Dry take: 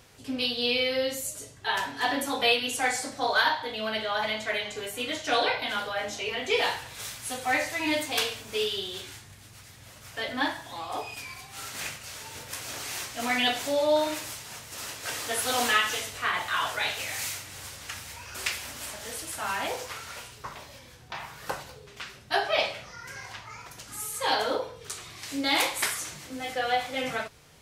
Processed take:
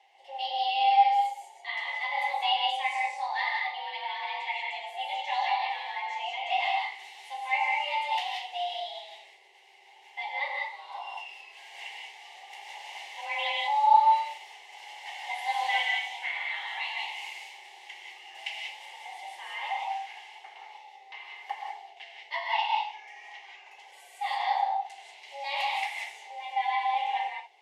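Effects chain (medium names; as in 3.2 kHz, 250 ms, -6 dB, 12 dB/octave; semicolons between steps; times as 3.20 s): vowel filter e; gated-style reverb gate 210 ms rising, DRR 0 dB; frequency shift +280 Hz; trim +5.5 dB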